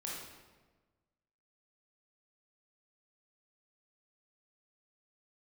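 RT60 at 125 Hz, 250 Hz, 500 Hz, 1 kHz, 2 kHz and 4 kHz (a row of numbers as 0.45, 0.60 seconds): 1.7, 1.5, 1.4, 1.2, 1.1, 0.90 seconds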